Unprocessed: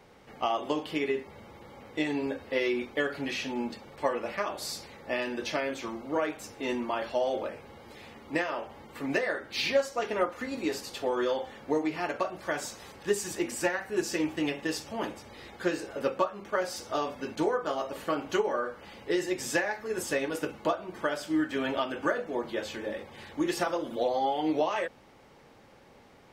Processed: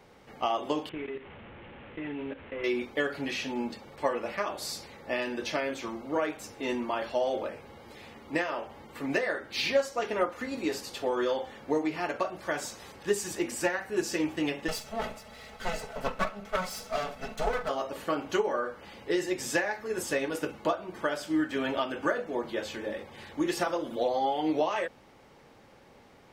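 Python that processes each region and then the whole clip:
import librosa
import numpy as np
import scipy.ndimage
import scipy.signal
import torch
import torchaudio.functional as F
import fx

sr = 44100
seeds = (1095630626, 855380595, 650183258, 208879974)

y = fx.chain(x, sr, fx.delta_mod(bps=16000, step_db=-36.0),
    fx.peak_eq(hz=860.0, db=-4.0, octaves=2.2),
    fx.level_steps(step_db=12), at=(0.89, 2.64))
y = fx.chain(y, sr, fx.lower_of_two(delay_ms=1.5),
    fx.comb(ms=4.6, depth=0.61), at=(14.68, 17.69))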